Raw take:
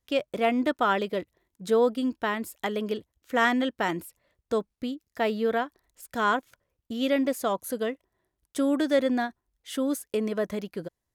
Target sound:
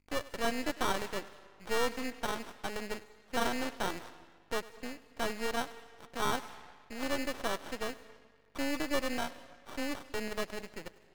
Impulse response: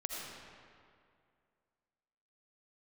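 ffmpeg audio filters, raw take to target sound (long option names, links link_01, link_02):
-filter_complex "[0:a]aeval=exprs='val(0)+0.00112*(sin(2*PI*50*n/s)+sin(2*PI*2*50*n/s)/2+sin(2*PI*3*50*n/s)/3+sin(2*PI*4*50*n/s)/4+sin(2*PI*5*50*n/s)/5)':channel_layout=same,acrusher=samples=19:mix=1:aa=0.000001,asplit=2[link_01][link_02];[1:a]atrim=start_sample=2205,asetrate=61740,aresample=44100,adelay=100[link_03];[link_02][link_03]afir=irnorm=-1:irlink=0,volume=-14.5dB[link_04];[link_01][link_04]amix=inputs=2:normalize=0,asplit=2[link_05][link_06];[link_06]highpass=frequency=720:poles=1,volume=10dB,asoftclip=type=tanh:threshold=-9dB[link_07];[link_05][link_07]amix=inputs=2:normalize=0,lowpass=frequency=6800:poles=1,volume=-6dB,aeval=exprs='max(val(0),0)':channel_layout=same,volume=-6.5dB"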